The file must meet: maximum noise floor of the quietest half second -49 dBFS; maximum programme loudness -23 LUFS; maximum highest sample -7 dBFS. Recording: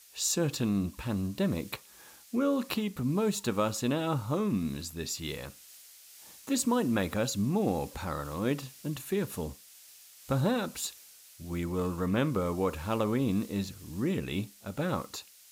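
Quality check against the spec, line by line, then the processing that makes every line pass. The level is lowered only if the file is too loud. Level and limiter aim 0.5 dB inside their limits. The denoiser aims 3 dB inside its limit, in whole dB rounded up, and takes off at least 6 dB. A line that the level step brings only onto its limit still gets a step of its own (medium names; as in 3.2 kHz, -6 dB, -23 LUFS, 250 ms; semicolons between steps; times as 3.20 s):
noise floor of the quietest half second -54 dBFS: pass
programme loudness -31.5 LUFS: pass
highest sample -14.5 dBFS: pass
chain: none needed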